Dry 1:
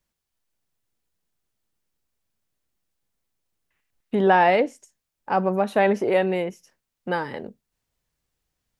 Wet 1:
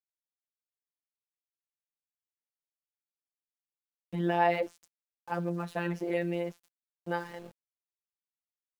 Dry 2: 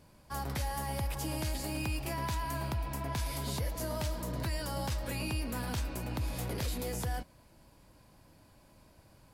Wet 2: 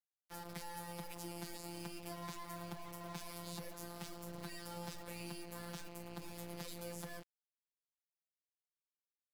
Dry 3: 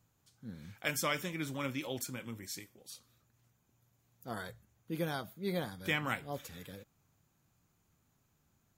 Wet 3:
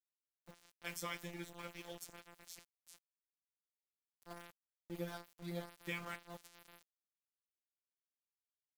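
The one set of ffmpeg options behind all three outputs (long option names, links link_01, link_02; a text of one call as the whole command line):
ffmpeg -i in.wav -af "afftfilt=real='hypot(re,im)*cos(PI*b)':imag='0':win_size=1024:overlap=0.75,aeval=exprs='val(0)*gte(abs(val(0)),0.00631)':channel_layout=same,volume=-6.5dB" out.wav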